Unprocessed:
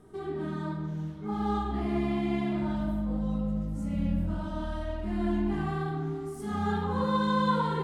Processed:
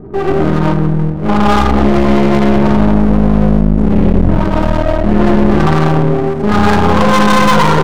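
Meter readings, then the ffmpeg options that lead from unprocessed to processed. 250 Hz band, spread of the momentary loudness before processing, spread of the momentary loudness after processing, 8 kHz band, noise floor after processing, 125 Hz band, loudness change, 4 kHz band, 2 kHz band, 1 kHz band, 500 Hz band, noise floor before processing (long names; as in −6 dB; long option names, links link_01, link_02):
+19.0 dB, 8 LU, 5 LU, can't be measured, −16 dBFS, +20.0 dB, +19.5 dB, +20.5 dB, +21.5 dB, +19.0 dB, +20.5 dB, −38 dBFS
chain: -af "adynamicsmooth=sensitivity=6:basefreq=530,aecho=1:1:91:0.075,apsyclip=26.5dB,aeval=exprs='clip(val(0),-1,0.0841)':channel_layout=same,volume=-1dB"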